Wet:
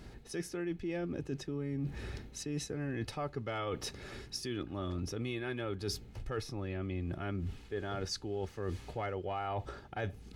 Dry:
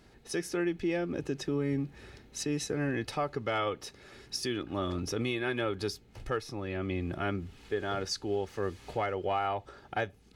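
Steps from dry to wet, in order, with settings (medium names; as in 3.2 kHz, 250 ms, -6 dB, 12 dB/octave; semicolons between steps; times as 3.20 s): bass shelf 190 Hz +8.5 dB; reverse; compression 6:1, threshold -39 dBFS, peak gain reduction 14.5 dB; reverse; trim +4 dB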